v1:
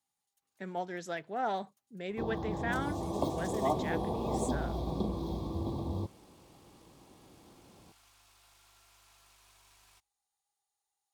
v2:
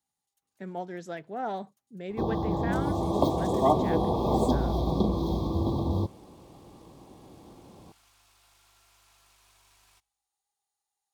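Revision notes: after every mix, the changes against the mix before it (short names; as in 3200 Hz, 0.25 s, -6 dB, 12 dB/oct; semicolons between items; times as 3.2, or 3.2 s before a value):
speech: add tilt shelf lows +4 dB, about 700 Hz; first sound +8.0 dB; second sound: send +7.5 dB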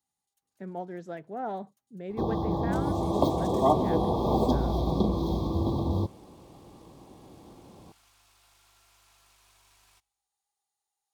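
speech: add high shelf 2100 Hz -11.5 dB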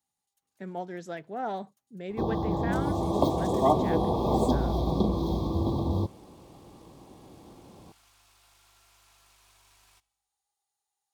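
speech: add high shelf 2100 Hz +11.5 dB; second sound: send +6.0 dB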